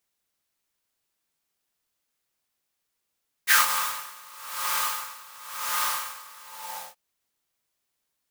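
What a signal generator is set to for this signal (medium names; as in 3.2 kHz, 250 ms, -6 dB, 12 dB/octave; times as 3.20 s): synth patch with tremolo F2, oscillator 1 triangle, oscillator 2 square, interval +12 st, noise -3 dB, filter highpass, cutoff 700 Hz, Q 5.7, filter envelope 1.5 oct, filter decay 0.15 s, filter sustain 45%, attack 38 ms, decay 0.15 s, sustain -15.5 dB, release 0.59 s, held 2.89 s, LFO 0.96 Hz, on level 21 dB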